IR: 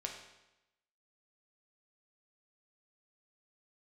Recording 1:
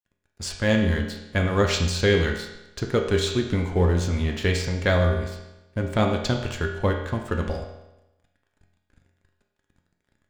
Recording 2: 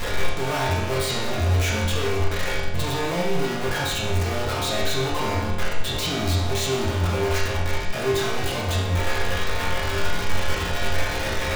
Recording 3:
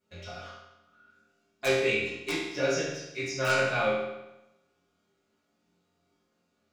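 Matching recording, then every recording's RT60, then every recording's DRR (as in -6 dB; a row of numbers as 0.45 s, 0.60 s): 1; 0.95 s, 0.95 s, 0.95 s; 1.0 dB, -7.0 dB, -14.5 dB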